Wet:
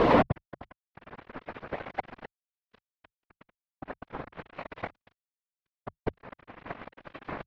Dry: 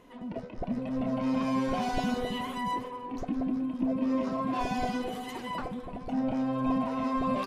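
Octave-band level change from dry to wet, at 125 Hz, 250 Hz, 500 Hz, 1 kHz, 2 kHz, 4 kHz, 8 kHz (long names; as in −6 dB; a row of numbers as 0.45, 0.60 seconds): −0.5 dB, −8.0 dB, +1.5 dB, −2.0 dB, +1.5 dB, −5.5 dB, below −15 dB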